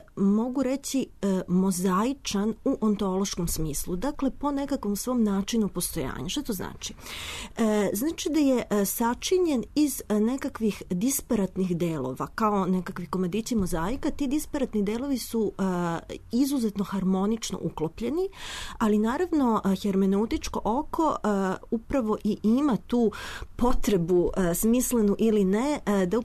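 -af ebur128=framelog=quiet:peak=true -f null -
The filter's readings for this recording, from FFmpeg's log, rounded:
Integrated loudness:
  I:         -26.7 LUFS
  Threshold: -36.7 LUFS
Loudness range:
  LRA:         3.2 LU
  Threshold: -47.0 LUFS
  LRA low:   -28.4 LUFS
  LRA high:  -25.3 LUFS
True peak:
  Peak:      -14.1 dBFS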